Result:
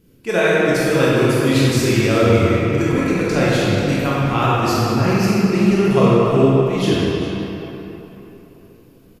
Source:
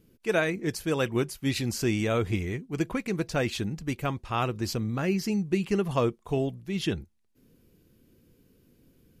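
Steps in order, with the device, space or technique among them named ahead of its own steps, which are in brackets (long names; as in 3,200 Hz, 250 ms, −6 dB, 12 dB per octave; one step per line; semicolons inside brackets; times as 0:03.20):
cave (single-tap delay 399 ms −15.5 dB; convolution reverb RT60 3.5 s, pre-delay 17 ms, DRR −8 dB)
level +4 dB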